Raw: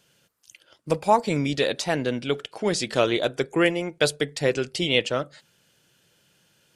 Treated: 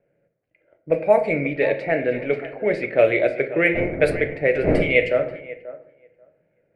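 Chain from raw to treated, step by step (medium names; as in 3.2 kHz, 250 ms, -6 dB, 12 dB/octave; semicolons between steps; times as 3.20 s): 2.14–2.55 s: jump at every zero crossing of -34.5 dBFS; 3.73–4.93 s: wind noise 320 Hz -28 dBFS; FFT filter 220 Hz 0 dB, 630 Hz +11 dB, 1 kHz -9 dB, 2.2 kHz +13 dB, 3.4 kHz -18 dB, 9.7 kHz +7 dB; on a send: thinning echo 536 ms, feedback 18%, high-pass 460 Hz, level -13.5 dB; on the sum: simulated room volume 100 m³, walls mixed, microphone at 0.4 m; level-controlled noise filter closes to 840 Hz, open at -7.5 dBFS; resonant high shelf 5.1 kHz -8 dB, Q 3; trim -4.5 dB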